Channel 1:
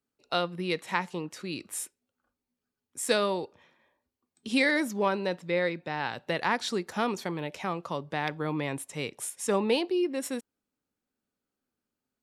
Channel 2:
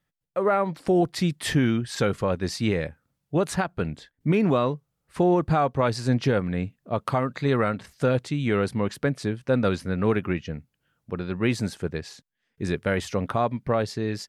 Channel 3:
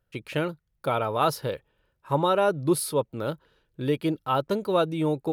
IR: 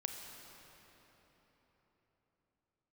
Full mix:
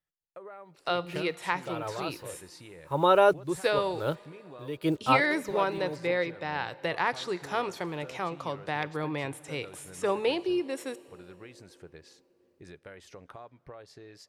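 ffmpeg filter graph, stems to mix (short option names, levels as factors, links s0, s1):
-filter_complex "[0:a]adelay=550,volume=0.841,asplit=2[s0][s1];[s1]volume=0.211[s2];[1:a]equalizer=f=110:w=1.7:g=-7,acompressor=threshold=0.0316:ratio=6,volume=0.211,asplit=3[s3][s4][s5];[s4]volume=0.106[s6];[2:a]acrusher=bits=8:mix=0:aa=0.5,adelay=800,volume=1.33[s7];[s5]apad=whole_len=270317[s8];[s7][s8]sidechaincompress=threshold=0.00141:ratio=10:attack=6.1:release=223[s9];[3:a]atrim=start_sample=2205[s10];[s2][s6]amix=inputs=2:normalize=0[s11];[s11][s10]afir=irnorm=-1:irlink=0[s12];[s0][s3][s9][s12]amix=inputs=4:normalize=0,acrossover=split=3600[s13][s14];[s14]acompressor=threshold=0.00708:ratio=4:attack=1:release=60[s15];[s13][s15]amix=inputs=2:normalize=0,equalizer=f=220:t=o:w=0.34:g=-15"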